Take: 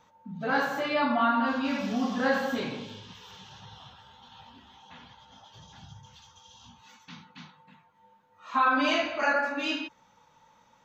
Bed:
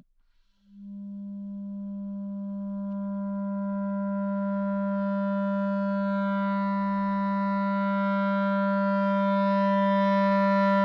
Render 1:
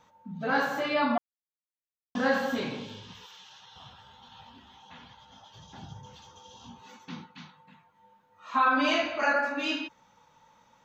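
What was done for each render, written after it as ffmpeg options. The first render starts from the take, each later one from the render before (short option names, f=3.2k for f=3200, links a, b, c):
-filter_complex "[0:a]asettb=1/sr,asplit=3[a][b][c];[a]atrim=end=3.264[d];[b]atrim=start=3.26:end=3.76,asetpts=PTS-STARTPTS,afade=t=in:d=0.004:c=qsin,afade=t=out:st=0.496:d=0.004:c=qsin,highpass=f=1.3k:p=1[e];[c]atrim=start=3.756[f];[d][e]acrossfade=d=0.004:c1=hsin:c2=qsin[g];[g][f]acrossfade=d=0.004:c1=qsin:c2=hsin,asettb=1/sr,asplit=3[h][i][j];[h]atrim=end=5.734[k];[i]atrim=start=5.73:end=7.26,asetpts=PTS-STARTPTS,afade=t=in:d=0.004:c=qsin,afade=t=out:st=1.526:d=0.004:c=qsin,equalizer=f=380:w=0.71:g=14[l];[j]atrim=start=7.256[m];[k][l]acrossfade=d=0.004:c1=hsin:c2=qsin[n];[n][m]acrossfade=d=0.004:c1=qsin:c2=hsin,asplit=3[o][p][q];[o]atrim=end=1.18,asetpts=PTS-STARTPTS,afade=t=out:st=1.176:d=0.004:c=hsin[r];[p]atrim=start=1.18:end=2.15,asetpts=PTS-STARTPTS,volume=0[s];[q]atrim=start=2.15,asetpts=PTS-STARTPTS,afade=t=in:d=0.004:c=hsin[t];[r][s][t]concat=n=3:v=0:a=1"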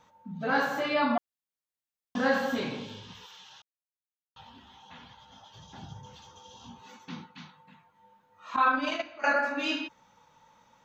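-filter_complex "[0:a]asettb=1/sr,asplit=3[a][b][c];[a]atrim=end=8.564[d];[b]atrim=start=8.56:end=9.24,asetpts=PTS-STARTPTS,afade=t=in:d=0.004:c=qsin,afade=t=out:st=0.676:d=0.004:c=qsin,agate=range=-14dB:threshold=-25dB:ratio=16:release=100:detection=peak[e];[c]atrim=start=9.236[f];[d][e]acrossfade=d=0.004:c1=hsin:c2=qsin[g];[g][f]acrossfade=d=0.004:c1=qsin:c2=hsin,asplit=3[h][i][j];[h]atrim=end=3.62,asetpts=PTS-STARTPTS,afade=t=out:st=3.616:d=0.004:c=hsin[k];[i]atrim=start=3.62:end=4.36,asetpts=PTS-STARTPTS,volume=0[l];[j]atrim=start=4.36,asetpts=PTS-STARTPTS,afade=t=in:d=0.004:c=hsin[m];[k][l][m]concat=n=3:v=0:a=1"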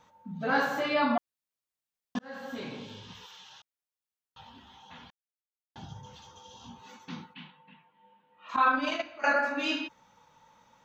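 -filter_complex "[0:a]asettb=1/sr,asplit=3[a][b][c];[a]atrim=end=5.104[d];[b]atrim=start=5.1:end=5.76,asetpts=PTS-STARTPTS,afade=t=in:d=0.004:c=qsin,afade=t=out:st=0.656:d=0.004:c=qsin,acrusher=bits=3:mix=0:aa=0.5[e];[c]atrim=start=5.756[f];[d][e]acrossfade=d=0.004:c1=hsin:c2=qsin[g];[g][f]acrossfade=d=0.004:c1=qsin:c2=hsin,asplit=3[h][i][j];[h]afade=t=out:st=7.33:d=0.02[k];[i]highpass=f=150:w=0.5412,highpass=f=150:w=1.3066,equalizer=f=680:t=q:w=4:g=-4,equalizer=f=1.3k:t=q:w=4:g=-7,equalizer=f=2.9k:t=q:w=4:g=8,lowpass=f=3.4k:w=0.5412,lowpass=f=3.4k:w=1.3066,afade=t=in:st=7.33:d=0.02,afade=t=out:st=8.48:d=0.02[l];[j]afade=t=in:st=8.48:d=0.02[m];[k][l][m]amix=inputs=3:normalize=0,asplit=2[n][o];[n]atrim=end=2.19,asetpts=PTS-STARTPTS,afade=t=out:st=2.186:d=0.004:c=hsin[p];[o]atrim=start=2.19,asetpts=PTS-STARTPTS,afade=t=in:d=0.93[q];[p][q]concat=n=2:v=0:a=1"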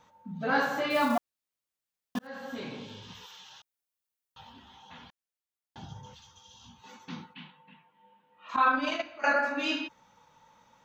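-filter_complex "[0:a]asettb=1/sr,asplit=3[a][b][c];[a]atrim=end=0.904[d];[b]atrim=start=0.9:end=2.27,asetpts=PTS-STARTPTS,afade=t=in:d=0.004:c=qsin,afade=t=out:st=1.366:d=0.004:c=qsin,acrusher=bits=5:mode=log:mix=0:aa=0.000001[e];[c]atrim=start=2.266[f];[d][e]acrossfade=d=0.004:c1=hsin:c2=qsin[g];[g][f]acrossfade=d=0.004:c1=qsin:c2=hsin,asettb=1/sr,asplit=3[h][i][j];[h]atrim=end=3.024[k];[i]atrim=start=3.02:end=4.53,asetpts=PTS-STARTPTS,afade=t=in:d=0.004:c=qsin,afade=t=out:st=1.506:d=0.004:c=qsin,highshelf=f=9.1k:g=6.5[l];[j]atrim=start=4.526[m];[k][l]acrossfade=d=0.004:c1=hsin:c2=qsin[n];[n][m]acrossfade=d=0.004:c1=qsin:c2=hsin,asettb=1/sr,asplit=3[o][p][q];[o]atrim=end=6.144[r];[p]atrim=start=6.14:end=6.84,asetpts=PTS-STARTPTS,afade=t=in:d=0.004:c=qsin,afade=t=out:st=0.696:d=0.004:c=qsin,equalizer=f=460:w=0.49:g=-13[s];[q]atrim=start=6.836[t];[r][s]acrossfade=d=0.004:c1=hsin:c2=qsin[u];[u][t]acrossfade=d=0.004:c1=qsin:c2=hsin"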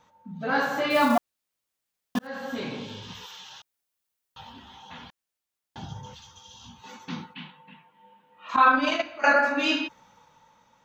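-af "dynaudnorm=f=120:g=13:m=6dB"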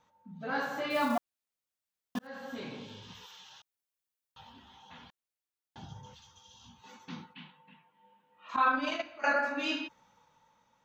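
-af "volume=-8.5dB"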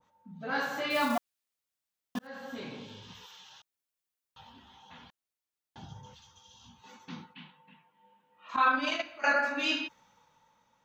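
-af "adynamicequalizer=threshold=0.00891:dfrequency=1500:dqfactor=0.7:tfrequency=1500:tqfactor=0.7:attack=5:release=100:ratio=0.375:range=2.5:mode=boostabove:tftype=highshelf"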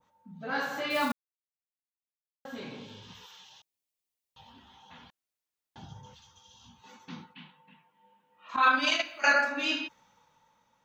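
-filter_complex "[0:a]asettb=1/sr,asplit=3[a][b][c];[a]atrim=end=3.454[d];[b]atrim=start=3.45:end=4.49,asetpts=PTS-STARTPTS,afade=t=in:d=0.004:c=qsin,afade=t=out:st=1.036:d=0.004:c=qsin,equalizer=f=1.4k:w=2.6:g=-10.5[e];[c]atrim=start=4.486[f];[d][e]acrossfade=d=0.004:c1=hsin:c2=qsin[g];[g][f]acrossfade=d=0.004:c1=qsin:c2=hsin,asplit=3[h][i][j];[h]afade=t=out:st=8.62:d=0.02[k];[i]highshelf=f=2.2k:g=10.5,afade=t=in:st=8.62:d=0.02,afade=t=out:st=9.43:d=0.02[l];[j]afade=t=in:st=9.43:d=0.02[m];[k][l][m]amix=inputs=3:normalize=0,asplit=3[n][o][p];[n]atrim=end=1.12,asetpts=PTS-STARTPTS,afade=t=out:st=1.116:d=0.004:c=hsin[q];[o]atrim=start=1.12:end=2.45,asetpts=PTS-STARTPTS,volume=0[r];[p]atrim=start=2.45,asetpts=PTS-STARTPTS,afade=t=in:d=0.004:c=hsin[s];[q][r][s]concat=n=3:v=0:a=1"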